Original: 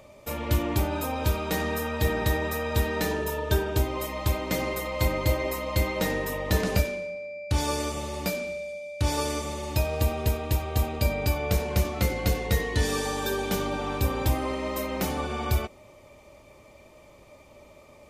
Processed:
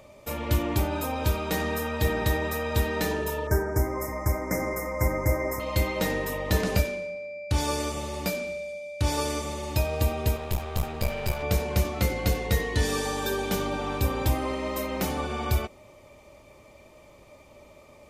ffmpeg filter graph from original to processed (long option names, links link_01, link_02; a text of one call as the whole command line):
ffmpeg -i in.wav -filter_complex "[0:a]asettb=1/sr,asplit=3[link_01][link_02][link_03];[link_01]atrim=end=3.474[link_04];[link_02]atrim=start=3.47:end=5.6,asetpts=PTS-STARTPTS,afade=type=in:duration=0.004:curve=qsin,afade=type=out:start_time=2.126:duration=0.004:curve=qsin,asuperstop=centerf=3400:order=20:qfactor=1.2,aecho=1:1:317:0.126,atrim=end_sample=93933[link_05];[link_03]atrim=start=5.596[link_06];[link_04][link_05]acrossfade=duration=0.004:curve1=hsin:curve2=qsin[link_07];[link_07][link_06]acrossfade=duration=0.004:curve1=qsin:curve2=hsin,asettb=1/sr,asplit=3[link_08][link_09][link_10];[link_08]atrim=end=10.364[link_11];[link_09]atrim=start=10.36:end=11.43,asetpts=PTS-STARTPTS,afade=type=in:duration=0.004:curve=qsin,afade=type=out:start_time=1.066:duration=0.004:curve=qsin,aeval=exprs='clip(val(0),-1,0.0168)':channel_layout=same,bandreject=frequency=290:width=5.1[link_12];[link_10]atrim=start=11.426[link_13];[link_11][link_12]acrossfade=duration=0.004:curve1=hsin:curve2=qsin[link_14];[link_14][link_13]acrossfade=duration=0.004:curve1=qsin:curve2=hsin" out.wav